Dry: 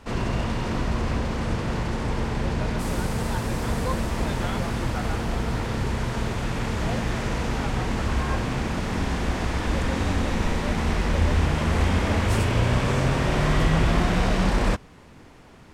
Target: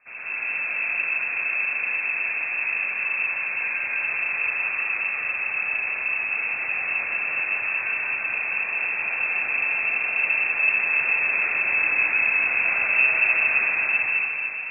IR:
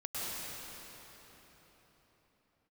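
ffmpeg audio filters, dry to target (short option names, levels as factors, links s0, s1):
-filter_complex "[0:a]asetrate=47187,aresample=44100[s0];[1:a]atrim=start_sample=2205[s1];[s0][s1]afir=irnorm=-1:irlink=0,lowpass=f=2300:t=q:w=0.5098,lowpass=f=2300:t=q:w=0.6013,lowpass=f=2300:t=q:w=0.9,lowpass=f=2300:t=q:w=2.563,afreqshift=-2700,volume=0.473"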